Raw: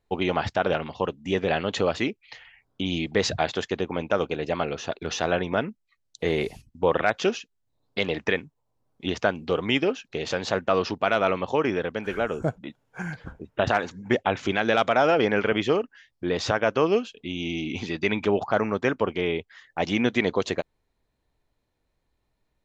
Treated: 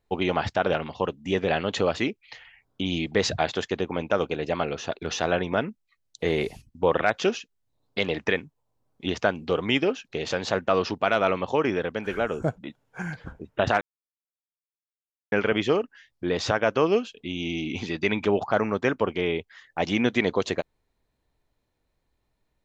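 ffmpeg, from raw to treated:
-filter_complex "[0:a]asplit=3[a][b][c];[a]atrim=end=13.81,asetpts=PTS-STARTPTS,afade=t=out:st=13.806:d=0.004:c=hsin[d];[b]atrim=start=13.81:end=15.32,asetpts=PTS-STARTPTS,volume=0[e];[c]atrim=start=15.32,asetpts=PTS-STARTPTS,afade=t=in:d=0.004:c=hsin[f];[d][e][f]concat=n=3:v=0:a=1"

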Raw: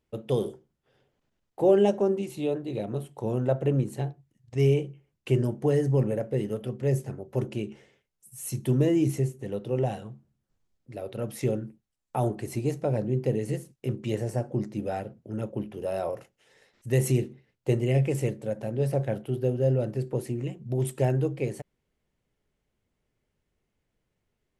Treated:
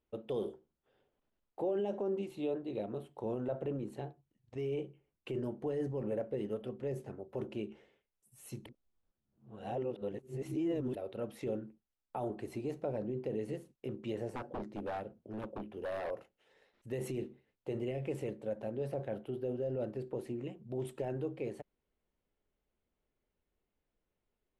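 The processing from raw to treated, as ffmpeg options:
-filter_complex "[0:a]asettb=1/sr,asplit=3[a][b][c];[a]atrim=end=14.314[d];[b]atrim=start=14.31:end=16.11,asetpts=PTS-STARTPTS,afade=t=in:d=0.004:c=qsin,afade=t=out:st=1.796:d=0.004:c=qsin,aeval=exprs='0.0447*(abs(mod(val(0)/0.0447+3,4)-2)-1)':c=same[e];[c]atrim=start=16.106[f];[d][e]acrossfade=d=0.004:c1=hsin:c2=qsin[g];[g][f]acrossfade=d=0.004:c1=qsin:c2=hsin,asplit=3[h][i][j];[h]atrim=end=8.662[k];[i]atrim=start=8.658:end=10.952,asetpts=PTS-STARTPTS,areverse[l];[j]atrim=start=10.948[m];[k][l]acrossfade=d=0.004:c1=hsin:c2=hsin[n];[n][m]acrossfade=d=0.004:c1=hsin:c2=hsin,highshelf=f=3.1k:t=q:w=1.5:g=-12.5,alimiter=limit=-21dB:level=0:latency=1:release=20,equalizer=f=125:t=o:w=1:g=-10,equalizer=f=2k:t=o:w=1:g=-9,equalizer=f=4k:t=o:w=1:g=10,volume=-5dB"

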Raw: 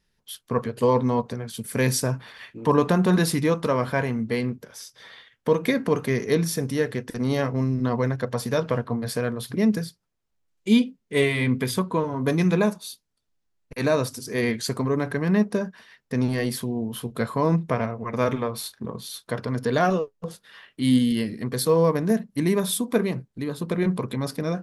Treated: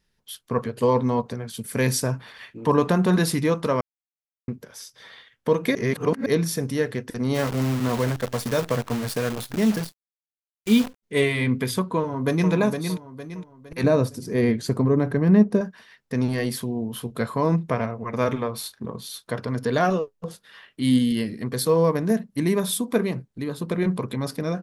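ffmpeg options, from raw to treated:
-filter_complex "[0:a]asplit=3[a][b][c];[a]afade=t=out:st=7.34:d=0.02[d];[b]acrusher=bits=6:dc=4:mix=0:aa=0.000001,afade=t=in:st=7.34:d=0.02,afade=t=out:st=11.02:d=0.02[e];[c]afade=t=in:st=11.02:d=0.02[f];[d][e][f]amix=inputs=3:normalize=0,asplit=2[g][h];[h]afade=t=in:st=11.97:d=0.01,afade=t=out:st=12.51:d=0.01,aecho=0:1:460|920|1380|1840|2300:0.473151|0.189261|0.0757042|0.0302817|0.0121127[i];[g][i]amix=inputs=2:normalize=0,asettb=1/sr,asplit=3[j][k][l];[j]atrim=end=13.834[m];[k]atrim=start=13.83:end=15.61,asetpts=PTS-STARTPTS,afade=t=in:d=0.004:c=qsin,afade=t=out:st=1.776:d=0.004:c=qsin,tiltshelf=f=790:g=6[n];[l]atrim=start=15.606[o];[m][n]acrossfade=d=0.004:c1=hsin:c2=qsin[p];[p][o]acrossfade=d=0.004:c1=qsin:c2=hsin,asplit=5[q][r][s][t][u];[q]atrim=end=3.81,asetpts=PTS-STARTPTS,afade=t=out:st=3.806:d=0.004:c=hsin[v];[r]atrim=start=3.81:end=4.48,asetpts=PTS-STARTPTS,volume=0[w];[s]atrim=start=4.48:end=5.752,asetpts=PTS-STARTPTS,afade=t=in:d=0.004:c=hsin[x];[t]atrim=start=5.748:end=6.262,asetpts=PTS-STARTPTS,areverse[y];[u]atrim=start=6.258[z];[v][w][x]concat=n=3:v=0:a=1[aa];[aa][y]acrossfade=d=0.004:c1=hsin:c2=hsin[ab];[ab][z]acrossfade=d=0.004:c1=hsin:c2=hsin"

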